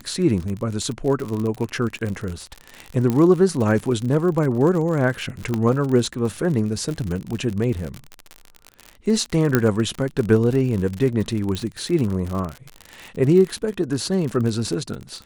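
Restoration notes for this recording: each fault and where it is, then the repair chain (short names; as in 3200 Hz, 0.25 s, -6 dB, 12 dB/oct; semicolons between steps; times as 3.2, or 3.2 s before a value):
crackle 56/s -25 dBFS
3.1 pop -10 dBFS
5.54 pop -11 dBFS
9.55 pop -3 dBFS
11.55 pop -13 dBFS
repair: de-click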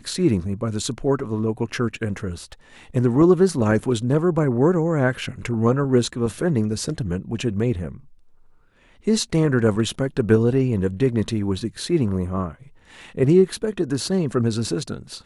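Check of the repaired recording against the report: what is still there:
5.54 pop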